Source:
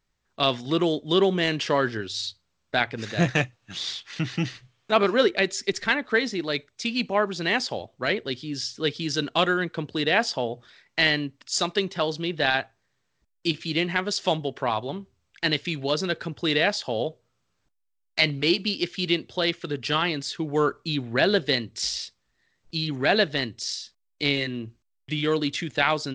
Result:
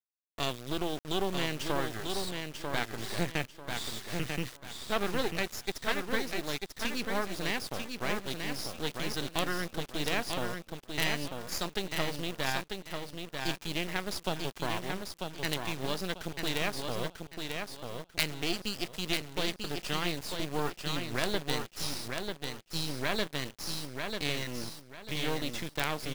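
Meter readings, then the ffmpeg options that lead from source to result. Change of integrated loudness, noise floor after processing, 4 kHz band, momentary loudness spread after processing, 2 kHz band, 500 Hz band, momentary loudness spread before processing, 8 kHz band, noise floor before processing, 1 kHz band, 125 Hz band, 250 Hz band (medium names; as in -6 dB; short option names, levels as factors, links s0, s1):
-9.0 dB, -57 dBFS, -8.0 dB, 6 LU, -9.0 dB, -10.5 dB, 9 LU, -3.0 dB, -75 dBFS, -8.0 dB, -7.0 dB, -9.0 dB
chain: -af "acompressor=threshold=0.0112:ratio=1.5,acrusher=bits=4:dc=4:mix=0:aa=0.000001,aecho=1:1:943|1886|2829|3772:0.562|0.157|0.0441|0.0123"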